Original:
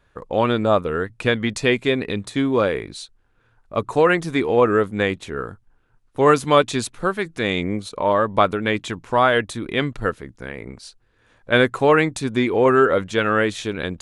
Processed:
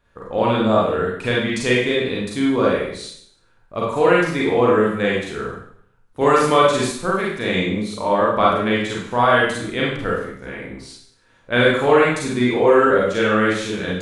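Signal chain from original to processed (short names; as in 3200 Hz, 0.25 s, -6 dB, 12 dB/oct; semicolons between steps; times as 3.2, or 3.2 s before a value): Schroeder reverb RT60 0.64 s, combs from 33 ms, DRR -5 dB; 6.21–6.91 three-band squash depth 40%; gain -4.5 dB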